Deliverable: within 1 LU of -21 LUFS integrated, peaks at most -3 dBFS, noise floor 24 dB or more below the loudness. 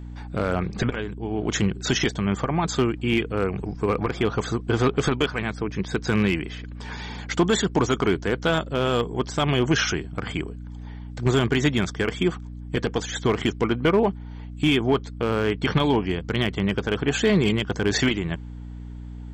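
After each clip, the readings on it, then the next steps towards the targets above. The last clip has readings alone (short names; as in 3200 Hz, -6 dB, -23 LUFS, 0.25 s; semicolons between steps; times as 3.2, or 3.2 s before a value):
clipped 0.4%; flat tops at -12.0 dBFS; hum 60 Hz; harmonics up to 300 Hz; hum level -34 dBFS; loudness -24.0 LUFS; peak -12.0 dBFS; loudness target -21.0 LUFS
-> clip repair -12 dBFS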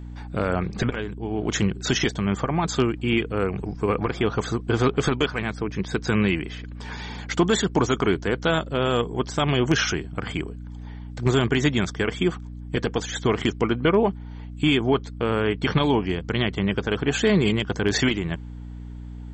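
clipped 0.0%; hum 60 Hz; harmonics up to 300 Hz; hum level -34 dBFS
-> notches 60/120/180/240/300 Hz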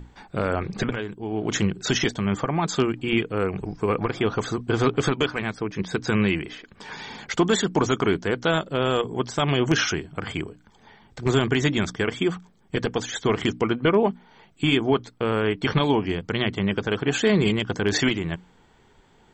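hum none; loudness -24.5 LUFS; peak -7.5 dBFS; loudness target -21.0 LUFS
-> gain +3.5 dB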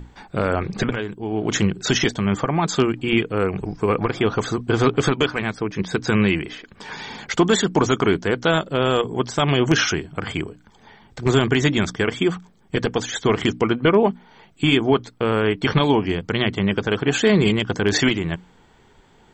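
loudness -21.0 LUFS; peak -4.0 dBFS; noise floor -53 dBFS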